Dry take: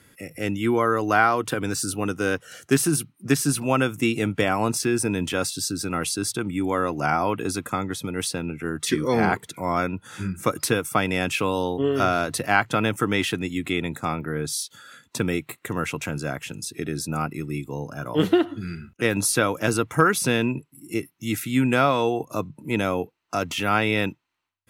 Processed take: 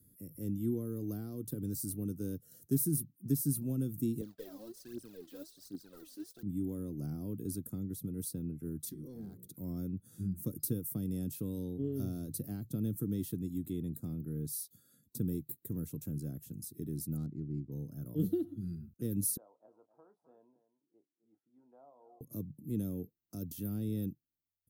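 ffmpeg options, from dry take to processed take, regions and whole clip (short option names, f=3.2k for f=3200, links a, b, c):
-filter_complex "[0:a]asettb=1/sr,asplit=3[a][b][c];[a]atrim=end=4.214[d];[b]atrim=start=4.21:end=6.43,asetpts=PTS-STARTPTS,afade=t=in:d=0.004:c=qsin,afade=t=out:st=2.216:d=0.004:c=qsin,acrusher=bits=2:mode=log:mix=0:aa=0.000001,highpass=620,lowpass=2.8k,aphaser=in_gain=1:out_gain=1:delay=4:decay=0.79:speed=1.3:type=triangular[e];[c]atrim=start=6.426[f];[d][e]acrossfade=d=0.004:c1=hsin:c2=qsin[g];[g][f]acrossfade=d=0.004:c1=qsin:c2=hsin,asettb=1/sr,asplit=3[h][i][j];[h]atrim=end=8.894[k];[i]atrim=start=8.89:end=9.48,asetpts=PTS-STARTPTS,afade=t=in:d=0.004:c=qsin,afade=t=out:st=0.586:d=0.004:c=qsin,bandreject=f=60:t=h:w=6,bandreject=f=120:t=h:w=6,bandreject=f=180:t=h:w=6,bandreject=f=240:t=h:w=6,bandreject=f=300:t=h:w=6,bandreject=f=360:t=h:w=6,bandreject=f=420:t=h:w=6,bandreject=f=480:t=h:w=6,bandreject=f=540:t=h:w=6,acompressor=threshold=-35dB:ratio=2.5:attack=3.2:release=140:knee=1:detection=peak,asoftclip=type=hard:threshold=-27dB[l];[j]atrim=start=9.476[m];[k][l]acrossfade=d=0.004:c1=hsin:c2=qsin[n];[n][m]acrossfade=d=0.004:c1=qsin:c2=hsin,asettb=1/sr,asplit=3[o][p][q];[o]atrim=end=17.174[r];[p]atrim=start=17.17:end=17.72,asetpts=PTS-STARTPTS,afade=t=in:d=0.004:c=qsin,afade=t=out:st=0.546:d=0.004:c=qsin,highshelf=f=2.8k:t=q:w=1.5:g=-10.5,adynamicsmooth=sensitivity=3:basefreq=1.4k[s];[q]atrim=start=17.716[t];[r][s]acrossfade=d=0.004:c1=hsin:c2=qsin[u];[u][t]acrossfade=d=0.004:c1=qsin:c2=hsin,asettb=1/sr,asplit=3[v][w][x];[v]atrim=end=19.374[y];[w]atrim=start=19.37:end=22.21,asetpts=PTS-STARTPTS,afade=t=in:d=0.004:c=qsin,afade=t=out:st=2.836:d=0.004:c=qsin,asuperpass=centerf=820:order=4:qfactor=2.7,asplit=2[z][aa];[aa]adelay=28,volume=-11dB[ab];[z][ab]amix=inputs=2:normalize=0,atrim=end_sample=125244,aecho=1:1:259:0.211,atrim=end_sample=125244[ac];[x]atrim=start=22.206[ad];[y][ac]acrossfade=d=0.004:c1=hsin:c2=qsin[ae];[ae][ad]acrossfade=d=0.004:c1=qsin:c2=hsin,equalizer=f=2.3k:t=o:w=0.31:g=-8,acrossover=split=470|3000[af][ag][ah];[ag]acompressor=threshold=-32dB:ratio=2.5[ai];[af][ai][ah]amix=inputs=3:normalize=0,firequalizer=gain_entry='entry(200,0);entry(830,-28);entry(2800,-28);entry(4000,-16);entry(7500,-11);entry(14000,10)':delay=0.05:min_phase=1,volume=-7dB"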